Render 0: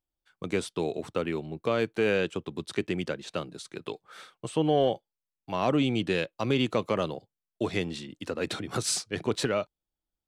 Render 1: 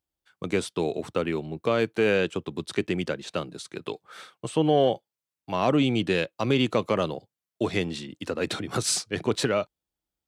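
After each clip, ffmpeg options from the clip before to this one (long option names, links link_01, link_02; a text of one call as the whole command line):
ffmpeg -i in.wav -af "highpass=50,volume=3dB" out.wav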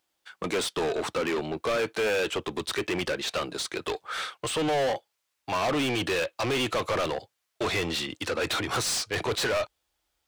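ffmpeg -i in.wav -filter_complex "[0:a]asubboost=boost=11:cutoff=56,asplit=2[link_01][link_02];[link_02]highpass=frequency=720:poles=1,volume=30dB,asoftclip=type=tanh:threshold=-11dB[link_03];[link_01][link_03]amix=inputs=2:normalize=0,lowpass=frequency=5800:poles=1,volume=-6dB,volume=-8.5dB" out.wav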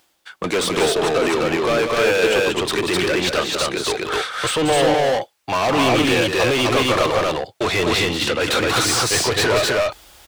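ffmpeg -i in.wav -af "aecho=1:1:186.6|256.6:0.447|0.891,areverse,acompressor=mode=upward:threshold=-36dB:ratio=2.5,areverse,volume=7.5dB" out.wav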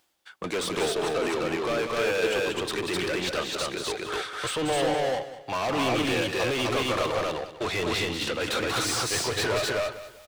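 ffmpeg -i in.wav -af "aecho=1:1:196|392|588:0.2|0.0619|0.0192,volume=-9dB" out.wav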